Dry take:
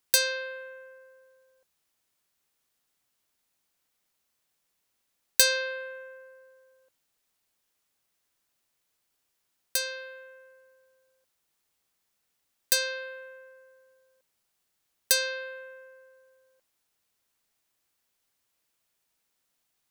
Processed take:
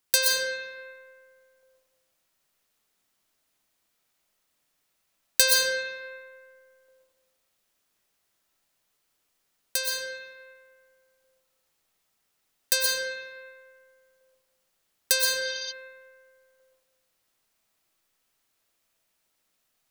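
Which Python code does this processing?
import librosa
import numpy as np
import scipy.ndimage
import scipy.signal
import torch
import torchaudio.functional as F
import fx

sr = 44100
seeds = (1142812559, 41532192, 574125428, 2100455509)

y = fx.rev_freeverb(x, sr, rt60_s=1.3, hf_ratio=0.65, predelay_ms=80, drr_db=-2.0)
y = fx.spec_repair(y, sr, seeds[0], start_s=15.43, length_s=0.26, low_hz=3000.0, high_hz=6300.0, source='before')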